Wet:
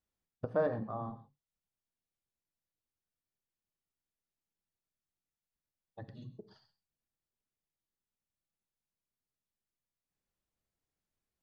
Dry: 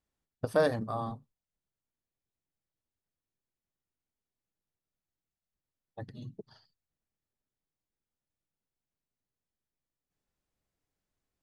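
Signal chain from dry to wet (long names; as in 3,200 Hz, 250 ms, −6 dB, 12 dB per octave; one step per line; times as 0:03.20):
reverb whose tail is shaped and stops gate 150 ms flat, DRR 11 dB
treble cut that deepens with the level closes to 1,500 Hz, closed at −33 dBFS
level −5 dB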